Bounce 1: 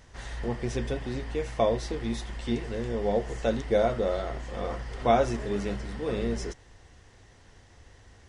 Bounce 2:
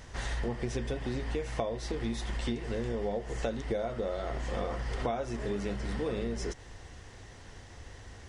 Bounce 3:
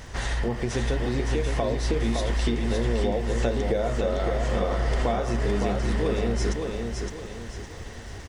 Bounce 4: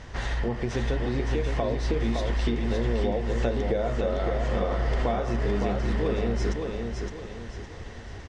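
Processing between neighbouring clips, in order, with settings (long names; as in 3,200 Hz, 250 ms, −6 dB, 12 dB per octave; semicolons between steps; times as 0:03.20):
downward compressor 12 to 1, threshold −35 dBFS, peak gain reduction 18.5 dB; level +5.5 dB
in parallel at −1.5 dB: brickwall limiter −26.5 dBFS, peak gain reduction 9 dB; on the sum: surface crackle 280 per second −51 dBFS; repeating echo 563 ms, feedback 38%, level −4.5 dB; level +2 dB
high-frequency loss of the air 94 metres; level −1 dB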